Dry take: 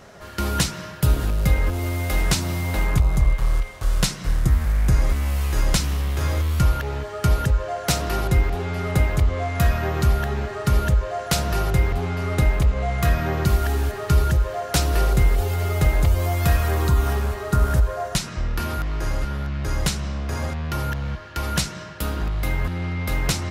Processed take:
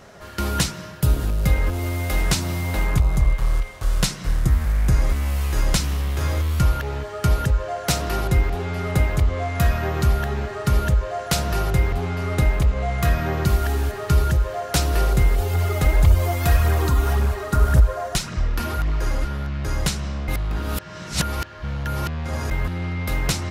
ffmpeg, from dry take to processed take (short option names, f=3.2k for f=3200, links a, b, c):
-filter_complex "[0:a]asettb=1/sr,asplit=3[a][b][c];[a]atrim=end=0.724[d];[b]atrim=start=0.72:end=1.44,asetpts=PTS-STARTPTS,afade=t=in:d=0.004:c=qsin,afade=t=out:st=0.716:d=0.004:c=qsin,equalizer=f=1.8k:w=0.42:g=-3[e];[c]atrim=start=1.436[f];[d][e]acrossfade=d=0.004:c1=hsin:c2=qsin[g];[g][f]acrossfade=d=0.004:c1=qsin:c2=hsin,asplit=3[h][i][j];[h]afade=t=out:st=15.53:d=0.02[k];[i]aphaser=in_gain=1:out_gain=1:delay=4.2:decay=0.39:speed=1.8:type=triangular,afade=t=in:st=15.53:d=0.02,afade=t=out:st=19.27:d=0.02[l];[j]afade=t=in:st=19.27:d=0.02[m];[k][l][m]amix=inputs=3:normalize=0,asplit=3[n][o][p];[n]atrim=end=20.282[q];[o]atrim=start=20.278:end=22.512,asetpts=PTS-STARTPTS,areverse[r];[p]atrim=start=22.508[s];[q][r]acrossfade=d=0.004:c1=hsin:c2=hsin[t];[t][s]acrossfade=d=0.004:c1=hsin:c2=hsin"